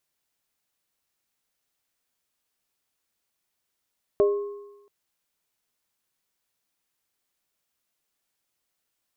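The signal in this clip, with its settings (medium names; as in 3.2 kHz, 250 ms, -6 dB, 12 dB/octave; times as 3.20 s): sine partials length 0.68 s, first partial 407 Hz, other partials 607/1080 Hz, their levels -5.5/-18.5 dB, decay 0.98 s, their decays 0.31/1.20 s, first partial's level -15 dB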